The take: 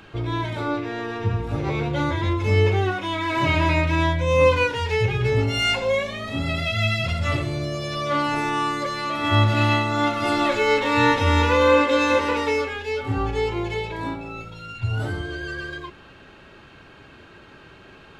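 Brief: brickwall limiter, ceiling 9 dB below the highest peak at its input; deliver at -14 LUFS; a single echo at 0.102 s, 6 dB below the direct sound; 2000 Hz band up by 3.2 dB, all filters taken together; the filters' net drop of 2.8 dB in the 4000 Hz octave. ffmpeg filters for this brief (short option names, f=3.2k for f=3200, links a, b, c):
-af "equalizer=f=2k:t=o:g=6,equalizer=f=4k:t=o:g=-7,alimiter=limit=-13.5dB:level=0:latency=1,aecho=1:1:102:0.501,volume=8.5dB"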